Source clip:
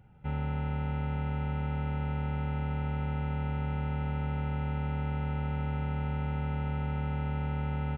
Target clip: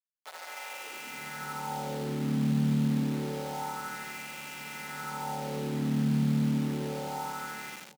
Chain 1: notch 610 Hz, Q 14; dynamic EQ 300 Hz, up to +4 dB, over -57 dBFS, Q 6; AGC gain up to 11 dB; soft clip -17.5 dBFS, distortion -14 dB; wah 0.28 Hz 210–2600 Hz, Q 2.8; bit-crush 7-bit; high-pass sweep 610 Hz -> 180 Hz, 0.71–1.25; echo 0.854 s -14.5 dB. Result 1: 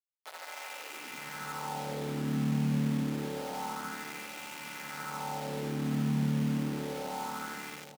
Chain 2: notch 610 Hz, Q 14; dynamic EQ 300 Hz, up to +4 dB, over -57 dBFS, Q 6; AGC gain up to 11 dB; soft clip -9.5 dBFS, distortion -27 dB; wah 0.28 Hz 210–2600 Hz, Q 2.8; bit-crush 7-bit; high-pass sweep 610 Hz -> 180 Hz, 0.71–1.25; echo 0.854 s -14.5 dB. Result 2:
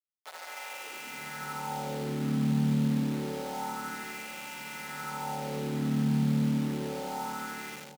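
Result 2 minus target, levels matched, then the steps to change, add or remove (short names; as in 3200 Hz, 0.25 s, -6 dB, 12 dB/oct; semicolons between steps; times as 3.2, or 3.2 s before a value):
echo-to-direct +9.5 dB
change: echo 0.854 s -24 dB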